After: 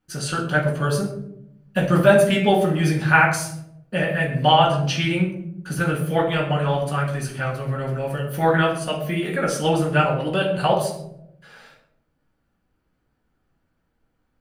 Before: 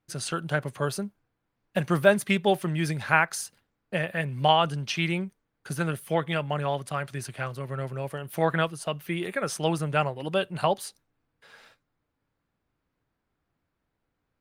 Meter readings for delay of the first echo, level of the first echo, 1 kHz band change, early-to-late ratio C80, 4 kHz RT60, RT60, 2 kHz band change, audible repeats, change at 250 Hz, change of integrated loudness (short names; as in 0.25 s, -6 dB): none, none, +6.5 dB, 9.0 dB, 0.40 s, 0.80 s, +6.5 dB, none, +7.5 dB, +6.5 dB